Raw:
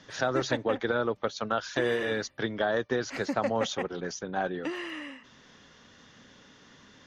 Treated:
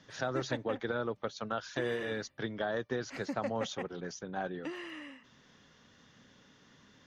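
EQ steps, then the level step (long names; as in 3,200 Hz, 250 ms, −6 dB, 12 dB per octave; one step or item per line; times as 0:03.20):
parametric band 140 Hz +4 dB 1.3 octaves
−7.0 dB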